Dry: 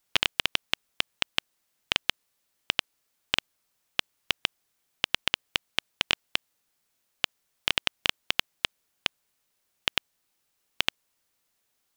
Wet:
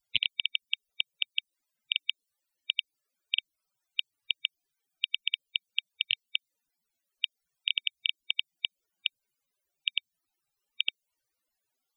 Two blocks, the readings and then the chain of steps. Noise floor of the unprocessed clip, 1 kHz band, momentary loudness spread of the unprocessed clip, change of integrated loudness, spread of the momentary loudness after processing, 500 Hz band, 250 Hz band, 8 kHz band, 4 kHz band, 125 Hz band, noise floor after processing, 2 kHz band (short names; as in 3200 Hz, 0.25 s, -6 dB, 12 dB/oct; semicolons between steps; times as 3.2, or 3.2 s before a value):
-76 dBFS, under -40 dB, 6 LU, -2.5 dB, 6 LU, under -40 dB, under -25 dB, under -35 dB, -1.5 dB, under -15 dB, -85 dBFS, -4.0 dB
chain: dynamic EQ 1200 Hz, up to -7 dB, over -48 dBFS, Q 0.98; loudest bins only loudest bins 64